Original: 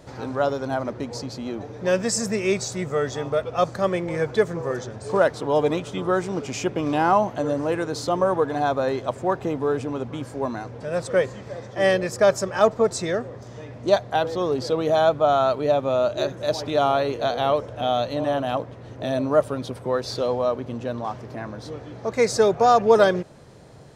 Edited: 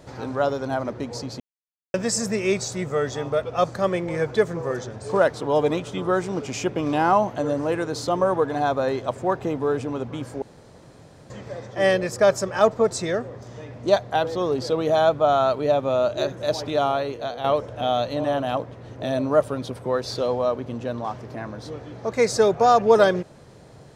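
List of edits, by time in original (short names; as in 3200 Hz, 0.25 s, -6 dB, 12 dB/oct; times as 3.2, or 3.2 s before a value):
1.4–1.94 mute
10.42–11.3 room tone
16.6–17.44 fade out linear, to -8.5 dB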